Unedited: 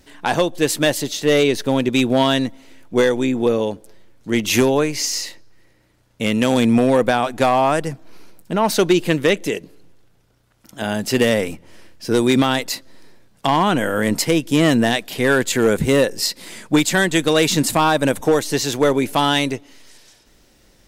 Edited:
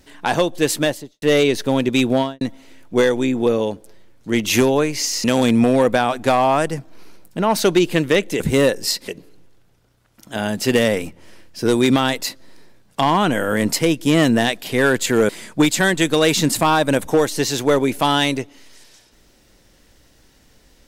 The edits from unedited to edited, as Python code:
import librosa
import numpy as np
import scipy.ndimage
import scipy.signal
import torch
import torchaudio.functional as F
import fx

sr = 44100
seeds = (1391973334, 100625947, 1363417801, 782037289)

y = fx.studio_fade_out(x, sr, start_s=0.74, length_s=0.48)
y = fx.studio_fade_out(y, sr, start_s=2.11, length_s=0.3)
y = fx.edit(y, sr, fx.cut(start_s=5.24, length_s=1.14),
    fx.move(start_s=15.75, length_s=0.68, to_s=9.54), tone=tone)